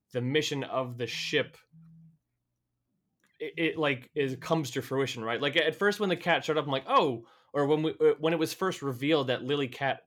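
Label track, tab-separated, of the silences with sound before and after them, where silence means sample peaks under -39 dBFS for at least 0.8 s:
1.470000	3.410000	silence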